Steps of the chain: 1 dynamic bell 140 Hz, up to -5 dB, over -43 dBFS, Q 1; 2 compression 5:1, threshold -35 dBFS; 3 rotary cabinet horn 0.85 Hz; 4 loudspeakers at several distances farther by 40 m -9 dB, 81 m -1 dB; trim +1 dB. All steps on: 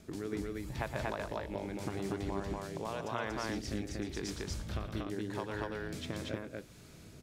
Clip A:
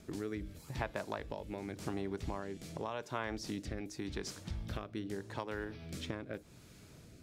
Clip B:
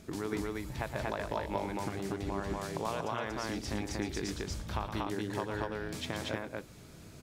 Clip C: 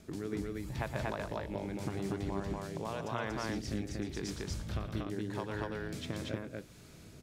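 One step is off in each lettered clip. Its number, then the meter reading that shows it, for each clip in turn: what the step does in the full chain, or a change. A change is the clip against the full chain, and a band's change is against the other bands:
4, momentary loudness spread change +3 LU; 3, 1 kHz band +2.0 dB; 1, 125 Hz band +3.0 dB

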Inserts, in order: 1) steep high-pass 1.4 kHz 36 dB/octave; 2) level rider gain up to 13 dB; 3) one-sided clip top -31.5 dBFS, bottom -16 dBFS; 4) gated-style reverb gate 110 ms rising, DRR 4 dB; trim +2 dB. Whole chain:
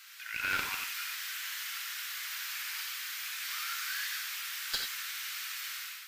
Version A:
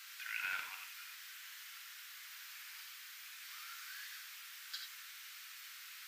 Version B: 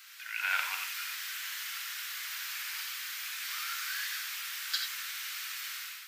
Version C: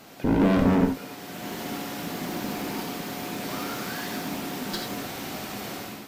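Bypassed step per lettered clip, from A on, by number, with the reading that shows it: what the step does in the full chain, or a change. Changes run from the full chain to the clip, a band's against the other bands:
2, momentary loudness spread change +5 LU; 3, momentary loudness spread change +1 LU; 1, 1 kHz band +11.0 dB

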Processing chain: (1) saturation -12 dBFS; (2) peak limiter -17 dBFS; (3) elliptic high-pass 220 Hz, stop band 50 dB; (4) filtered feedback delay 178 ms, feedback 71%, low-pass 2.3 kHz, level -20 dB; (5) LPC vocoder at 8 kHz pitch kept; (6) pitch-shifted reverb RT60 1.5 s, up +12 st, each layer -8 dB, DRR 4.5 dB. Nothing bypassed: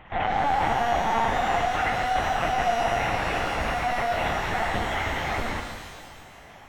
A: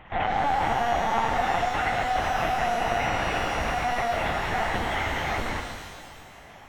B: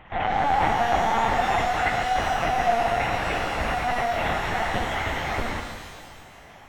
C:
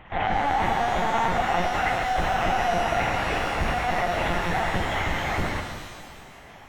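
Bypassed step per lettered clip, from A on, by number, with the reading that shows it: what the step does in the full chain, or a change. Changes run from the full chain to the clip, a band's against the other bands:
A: 1, distortion -23 dB; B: 2, crest factor change +2.0 dB; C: 3, 125 Hz band +2.0 dB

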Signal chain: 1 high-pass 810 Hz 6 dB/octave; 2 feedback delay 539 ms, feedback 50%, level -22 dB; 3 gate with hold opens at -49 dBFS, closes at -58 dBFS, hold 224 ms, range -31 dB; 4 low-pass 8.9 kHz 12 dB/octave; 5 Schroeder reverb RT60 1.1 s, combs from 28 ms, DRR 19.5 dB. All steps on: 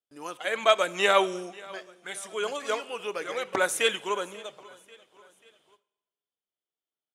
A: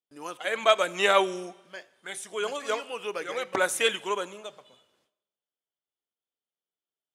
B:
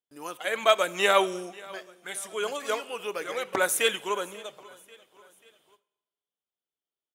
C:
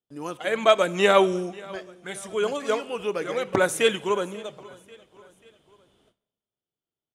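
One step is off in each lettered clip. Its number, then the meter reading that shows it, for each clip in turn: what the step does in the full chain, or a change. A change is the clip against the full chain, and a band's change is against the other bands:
2, momentary loudness spread change +1 LU; 4, 8 kHz band +3.0 dB; 1, 125 Hz band +12.0 dB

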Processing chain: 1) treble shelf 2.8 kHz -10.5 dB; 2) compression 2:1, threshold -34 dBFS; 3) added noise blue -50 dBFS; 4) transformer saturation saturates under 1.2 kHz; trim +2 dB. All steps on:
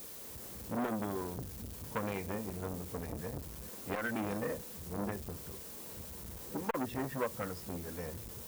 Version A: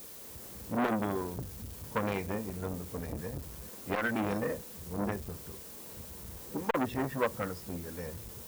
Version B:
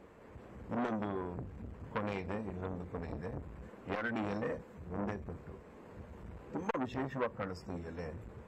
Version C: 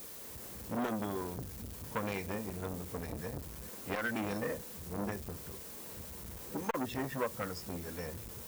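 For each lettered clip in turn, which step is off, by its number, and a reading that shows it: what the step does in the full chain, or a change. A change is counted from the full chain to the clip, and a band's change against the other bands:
2, momentary loudness spread change +4 LU; 3, 4 kHz band -4.5 dB; 1, 4 kHz band +2.0 dB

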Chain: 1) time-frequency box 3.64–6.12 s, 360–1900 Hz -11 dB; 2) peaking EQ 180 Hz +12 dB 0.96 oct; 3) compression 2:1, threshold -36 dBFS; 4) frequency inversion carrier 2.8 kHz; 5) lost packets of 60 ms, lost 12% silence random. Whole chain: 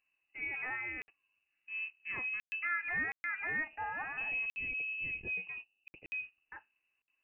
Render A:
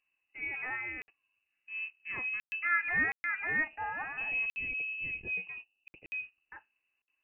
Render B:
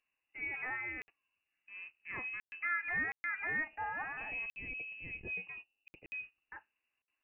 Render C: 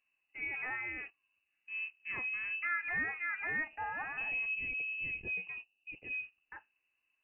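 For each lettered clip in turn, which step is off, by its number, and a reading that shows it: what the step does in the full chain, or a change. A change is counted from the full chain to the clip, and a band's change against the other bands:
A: 3, crest factor change +3.5 dB; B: 2, 2 kHz band -2.0 dB; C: 5, momentary loudness spread change -3 LU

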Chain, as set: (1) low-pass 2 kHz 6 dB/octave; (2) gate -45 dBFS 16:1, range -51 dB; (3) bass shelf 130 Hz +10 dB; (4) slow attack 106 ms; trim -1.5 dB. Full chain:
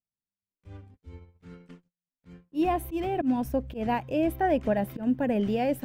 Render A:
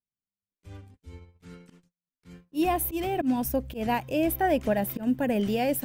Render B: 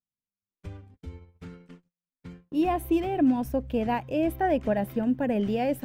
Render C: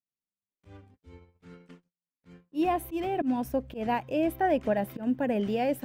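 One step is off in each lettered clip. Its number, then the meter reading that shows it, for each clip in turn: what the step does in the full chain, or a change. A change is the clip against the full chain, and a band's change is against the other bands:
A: 1, 8 kHz band +12.5 dB; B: 4, momentary loudness spread change +17 LU; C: 3, 125 Hz band -4.5 dB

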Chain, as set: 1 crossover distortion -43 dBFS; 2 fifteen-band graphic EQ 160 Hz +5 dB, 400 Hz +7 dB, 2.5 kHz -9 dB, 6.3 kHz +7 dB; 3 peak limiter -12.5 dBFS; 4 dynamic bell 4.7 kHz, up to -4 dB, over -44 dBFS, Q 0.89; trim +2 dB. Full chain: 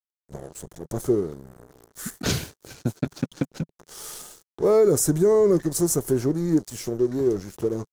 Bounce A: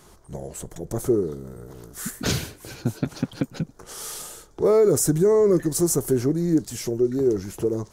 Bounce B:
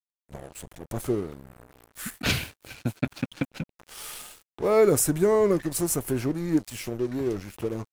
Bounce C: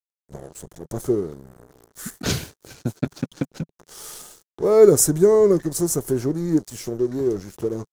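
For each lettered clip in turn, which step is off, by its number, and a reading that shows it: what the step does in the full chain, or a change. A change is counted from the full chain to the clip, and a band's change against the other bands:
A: 1, distortion -19 dB; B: 2, crest factor change +3.0 dB; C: 3, crest factor change +6.5 dB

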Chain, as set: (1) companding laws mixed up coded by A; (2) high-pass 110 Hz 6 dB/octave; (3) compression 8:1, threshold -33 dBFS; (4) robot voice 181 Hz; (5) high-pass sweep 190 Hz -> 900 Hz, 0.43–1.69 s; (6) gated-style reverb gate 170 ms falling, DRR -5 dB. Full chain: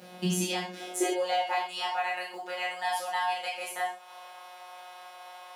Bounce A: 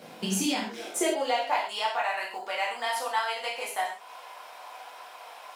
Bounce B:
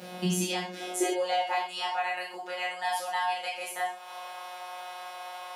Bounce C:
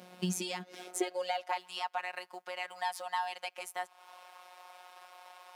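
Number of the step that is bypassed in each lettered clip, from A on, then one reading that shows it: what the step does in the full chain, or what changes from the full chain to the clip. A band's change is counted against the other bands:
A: 4, crest factor change -1.5 dB; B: 1, distortion -27 dB; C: 6, crest factor change +4.0 dB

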